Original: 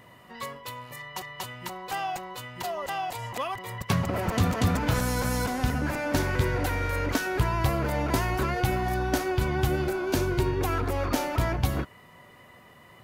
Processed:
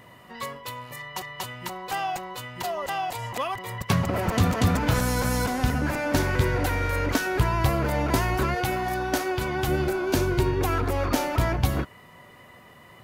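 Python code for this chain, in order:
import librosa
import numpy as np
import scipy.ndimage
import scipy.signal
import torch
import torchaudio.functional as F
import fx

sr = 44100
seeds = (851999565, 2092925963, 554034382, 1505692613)

y = fx.low_shelf(x, sr, hz=180.0, db=-10.0, at=(8.55, 9.68))
y = y * 10.0 ** (2.5 / 20.0)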